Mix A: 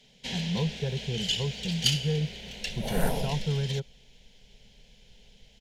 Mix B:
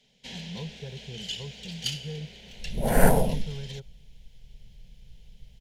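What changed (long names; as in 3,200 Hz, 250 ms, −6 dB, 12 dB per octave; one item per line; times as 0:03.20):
speech −9.0 dB
first sound −6.0 dB
second sound +9.0 dB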